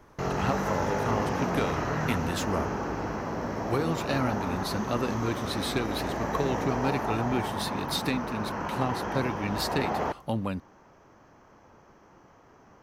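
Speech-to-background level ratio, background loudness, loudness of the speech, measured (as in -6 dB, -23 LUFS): -0.5 dB, -31.5 LUFS, -32.0 LUFS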